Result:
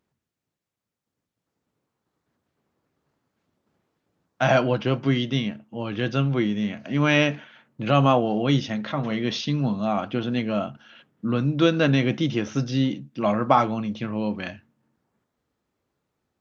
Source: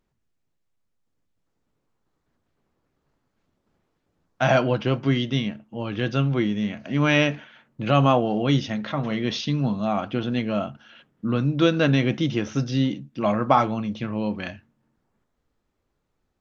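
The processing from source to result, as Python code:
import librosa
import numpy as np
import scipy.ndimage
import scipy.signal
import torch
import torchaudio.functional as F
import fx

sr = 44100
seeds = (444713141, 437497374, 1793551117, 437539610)

y = scipy.signal.sosfilt(scipy.signal.butter(2, 90.0, 'highpass', fs=sr, output='sos'), x)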